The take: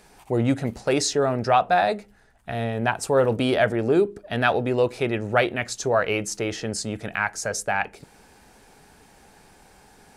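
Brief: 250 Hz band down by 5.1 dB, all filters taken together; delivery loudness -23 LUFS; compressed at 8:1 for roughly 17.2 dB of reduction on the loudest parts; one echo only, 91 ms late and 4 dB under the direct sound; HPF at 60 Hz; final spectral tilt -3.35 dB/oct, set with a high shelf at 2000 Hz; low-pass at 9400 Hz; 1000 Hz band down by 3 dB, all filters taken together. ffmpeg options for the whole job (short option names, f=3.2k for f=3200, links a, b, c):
-af "highpass=60,lowpass=9.4k,equalizer=f=250:t=o:g=-6.5,equalizer=f=1k:t=o:g=-5.5,highshelf=f=2k:g=5.5,acompressor=threshold=-35dB:ratio=8,aecho=1:1:91:0.631,volume=14dB"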